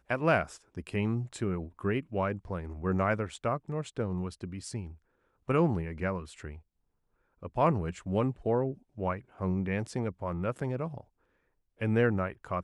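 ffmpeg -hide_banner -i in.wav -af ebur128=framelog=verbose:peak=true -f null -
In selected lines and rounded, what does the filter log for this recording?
Integrated loudness:
  I:         -32.0 LUFS
  Threshold: -42.5 LUFS
Loudness range:
  LRA:         2.9 LU
  Threshold: -53.2 LUFS
  LRA low:   -34.8 LUFS
  LRA high:  -31.9 LUFS
True peak:
  Peak:      -12.8 dBFS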